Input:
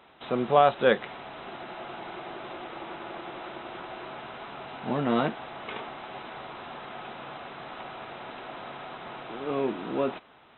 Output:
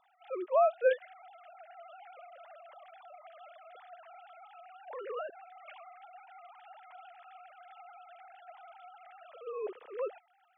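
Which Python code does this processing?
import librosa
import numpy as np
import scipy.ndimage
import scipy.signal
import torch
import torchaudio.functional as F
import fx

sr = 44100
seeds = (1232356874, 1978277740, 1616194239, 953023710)

y = fx.sine_speech(x, sr)
y = y * librosa.db_to_amplitude(-7.5)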